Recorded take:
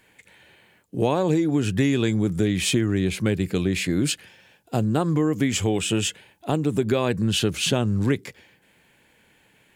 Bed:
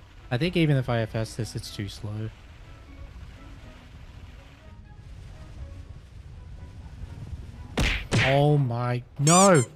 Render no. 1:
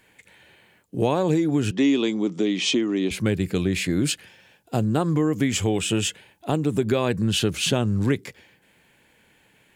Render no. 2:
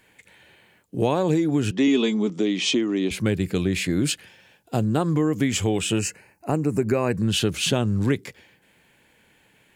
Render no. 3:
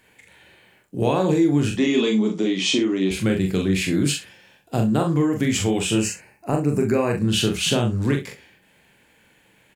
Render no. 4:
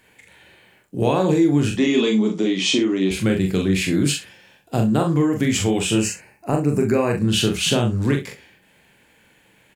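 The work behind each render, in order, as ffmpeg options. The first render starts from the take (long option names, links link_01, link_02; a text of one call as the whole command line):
ffmpeg -i in.wav -filter_complex "[0:a]asettb=1/sr,asplit=3[link_01][link_02][link_03];[link_01]atrim=end=1.714[link_04];[link_02]atrim=start=1.71:end=3.11,asetpts=PTS-STARTPTS,afade=type=in:duration=0.004:curve=qsin,afade=type=out:start_time=1.396:duration=0.004:curve=qsin,highpass=frequency=220:width=0.5412,highpass=frequency=220:width=1.3066,equalizer=frequency=280:width_type=q:width=4:gain=4,equalizer=frequency=1000:width_type=q:width=4:gain=4,equalizer=frequency=1600:width_type=q:width=4:gain=-9,equalizer=frequency=3100:width_type=q:width=4:gain=4,equalizer=frequency=5900:width_type=q:width=4:gain=4,lowpass=frequency=6400:width=0.5412,lowpass=frequency=6400:width=1.3066[link_05];[link_03]atrim=start=3.106[link_06];[link_04][link_05]acrossfade=duration=0.004:curve1=hsin:curve2=qsin[link_07];[link_07][link_06]acrossfade=duration=0.004:curve1=qsin:curve2=hsin" out.wav
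ffmpeg -i in.wav -filter_complex "[0:a]asettb=1/sr,asplit=3[link_01][link_02][link_03];[link_01]atrim=end=1.874[link_04];[link_02]atrim=start=1.87:end=2.3,asetpts=PTS-STARTPTS,afade=type=in:duration=0.004:curve=qsin,afade=type=out:start_time=0.426:duration=0.004:curve=qsin,aecho=1:1:4.7:0.65,atrim=end_sample=18963[link_05];[link_03]atrim=start=2.296[link_06];[link_04][link_05]acrossfade=duration=0.004:curve1=hsin:curve2=qsin[link_07];[link_07][link_06]acrossfade=duration=0.004:curve1=qsin:curve2=hsin,asettb=1/sr,asplit=3[link_08][link_09][link_10];[link_08]atrim=end=5.994[link_11];[link_09]atrim=start=5.99:end=7.15,asetpts=PTS-STARTPTS,afade=type=in:duration=0.004:curve=qsin,afade=type=out:start_time=1.156:duration=0.004:curve=qsin,asuperstop=centerf=3400:order=4:qfactor=1.9[link_12];[link_10]atrim=start=7.146[link_13];[link_11][link_12]acrossfade=duration=0.004:curve1=hsin:curve2=qsin[link_14];[link_14][link_13]acrossfade=duration=0.004:curve1=qsin:curve2=hsin" out.wav
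ffmpeg -i in.wav -filter_complex "[0:a]asplit=2[link_01][link_02];[link_02]adelay=42,volume=-4.5dB[link_03];[link_01][link_03]amix=inputs=2:normalize=0,aecho=1:1:27|64:0.335|0.158" out.wav
ffmpeg -i in.wav -af "volume=1.5dB" out.wav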